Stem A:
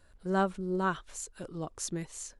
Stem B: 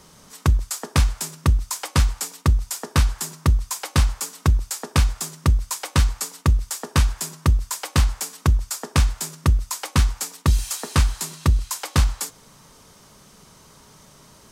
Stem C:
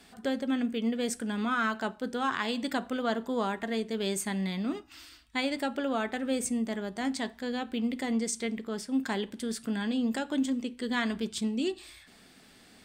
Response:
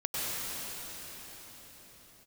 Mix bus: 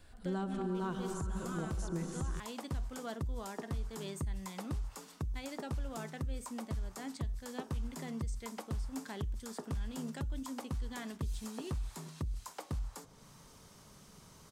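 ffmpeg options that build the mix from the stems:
-filter_complex "[0:a]lowshelf=frequency=170:gain=11,bandreject=frequency=580:width=12,volume=-2dB,asplit=2[link_01][link_02];[link_02]volume=-12.5dB[link_03];[1:a]acrossover=split=1200|6700[link_04][link_05][link_06];[link_04]acompressor=threshold=-20dB:ratio=4[link_07];[link_05]acompressor=threshold=-44dB:ratio=4[link_08];[link_06]acompressor=threshold=-45dB:ratio=4[link_09];[link_07][link_08][link_09]amix=inputs=3:normalize=0,lowshelf=frequency=150:gain=11,adelay=750,volume=-9dB[link_10];[2:a]volume=-12dB[link_11];[3:a]atrim=start_sample=2205[link_12];[link_03][link_12]afir=irnorm=-1:irlink=0[link_13];[link_01][link_10][link_11][link_13]amix=inputs=4:normalize=0,lowshelf=frequency=84:gain=-8,acrossover=split=1100|2200[link_14][link_15][link_16];[link_14]acompressor=threshold=-26dB:ratio=4[link_17];[link_15]acompressor=threshold=-51dB:ratio=4[link_18];[link_16]acompressor=threshold=-46dB:ratio=4[link_19];[link_17][link_18][link_19]amix=inputs=3:normalize=0,alimiter=level_in=4dB:limit=-24dB:level=0:latency=1:release=335,volume=-4dB"

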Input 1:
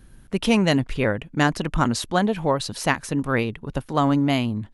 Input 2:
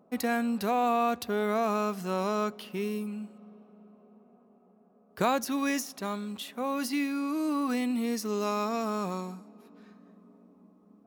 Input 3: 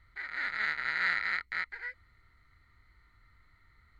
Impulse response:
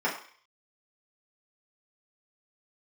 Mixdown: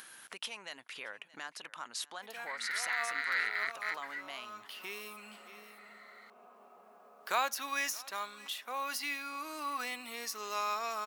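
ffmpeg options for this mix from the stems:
-filter_complex "[0:a]acompressor=threshold=-27dB:ratio=6,alimiter=limit=-21.5dB:level=0:latency=1:release=46,volume=-4dB,asplit=3[link_01][link_02][link_03];[link_02]volume=-23dB[link_04];[1:a]agate=range=-6dB:threshold=-50dB:ratio=16:detection=peak,equalizer=frequency=9000:width=0.54:gain=-3,adelay=2100,volume=1.5dB,asplit=2[link_05][link_06];[link_06]volume=-23dB[link_07];[2:a]adelay=2300,volume=-2.5dB[link_08];[link_03]apad=whole_len=580427[link_09];[link_05][link_09]sidechaincompress=threshold=-48dB:ratio=8:attack=6.2:release=176[link_10];[link_04][link_07]amix=inputs=2:normalize=0,aecho=0:1:623:1[link_11];[link_01][link_10][link_08][link_11]amix=inputs=4:normalize=0,highpass=1100,acompressor=mode=upward:threshold=-40dB:ratio=2.5"

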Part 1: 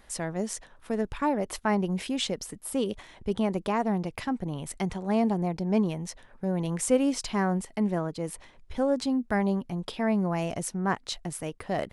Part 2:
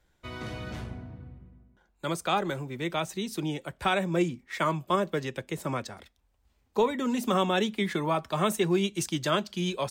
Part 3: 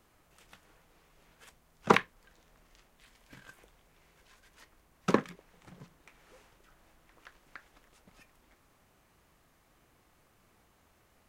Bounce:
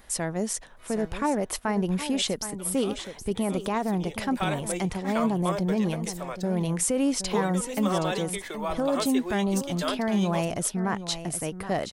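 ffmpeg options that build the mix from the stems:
ffmpeg -i stem1.wav -i stem2.wav -filter_complex "[0:a]alimiter=limit=-20dB:level=0:latency=1:release=16,volume=2.5dB,asplit=2[link_01][link_02];[link_02]volume=-11.5dB[link_03];[1:a]lowshelf=frequency=320:width_type=q:width=1.5:gain=-13.5,adelay=550,volume=-5dB,afade=type=in:start_time=3.63:duration=0.65:silence=0.251189,asplit=2[link_04][link_05];[link_05]volume=-22.5dB[link_06];[link_03][link_06]amix=inputs=2:normalize=0,aecho=0:1:771:1[link_07];[link_01][link_04][link_07]amix=inputs=3:normalize=0,highshelf=frequency=8200:gain=7.5" out.wav

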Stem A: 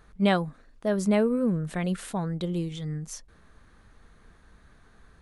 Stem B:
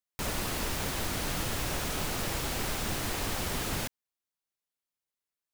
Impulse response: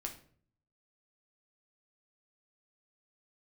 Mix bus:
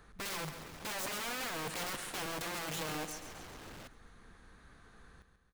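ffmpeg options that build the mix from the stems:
-filter_complex "[0:a]bandreject=frequency=620:width=12,acrossover=split=140|2700[link_01][link_02][link_03];[link_01]acompressor=threshold=-41dB:ratio=4[link_04];[link_02]acompressor=threshold=-30dB:ratio=4[link_05];[link_03]acompressor=threshold=-45dB:ratio=4[link_06];[link_04][link_05][link_06]amix=inputs=3:normalize=0,aeval=exprs='(mod(50.1*val(0)+1,2)-1)/50.1':channel_layout=same,volume=-0.5dB,asplit=3[link_07][link_08][link_09];[link_08]volume=-10dB[link_10];[1:a]lowpass=frequency=2800:poles=1,asoftclip=type=tanh:threshold=-39dB,volume=-7.5dB[link_11];[link_09]apad=whole_len=244061[link_12];[link_11][link_12]sidechaincompress=threshold=-48dB:ratio=8:attack=16:release=155[link_13];[link_10]aecho=0:1:137|274|411|548|685|822|959|1096:1|0.56|0.314|0.176|0.0983|0.0551|0.0308|0.0173[link_14];[link_07][link_13][link_14]amix=inputs=3:normalize=0,lowshelf=frequency=140:gain=-5"

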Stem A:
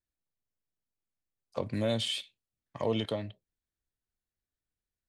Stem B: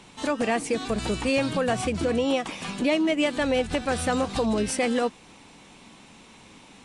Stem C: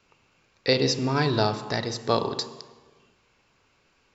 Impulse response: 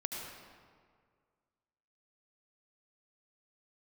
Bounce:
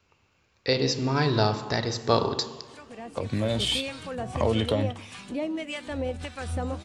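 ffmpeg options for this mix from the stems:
-filter_complex "[0:a]acompressor=threshold=-32dB:ratio=4,adelay=1600,volume=-0.5dB[link_01];[1:a]acrossover=split=1000[link_02][link_03];[link_02]aeval=exprs='val(0)*(1-0.7/2+0.7/2*cos(2*PI*1.7*n/s))':channel_layout=same[link_04];[link_03]aeval=exprs='val(0)*(1-0.7/2-0.7/2*cos(2*PI*1.7*n/s))':channel_layout=same[link_05];[link_04][link_05]amix=inputs=2:normalize=0,adelay=2500,volume=-17.5dB[link_06];[2:a]volume=1dB[link_07];[link_01][link_06][link_07]amix=inputs=3:normalize=0,equalizer=frequency=81:width_type=o:width=0.43:gain=13,dynaudnorm=framelen=220:gausssize=9:maxgain=16dB,flanger=delay=9.6:depth=5.7:regen=-88:speed=1.3:shape=sinusoidal"

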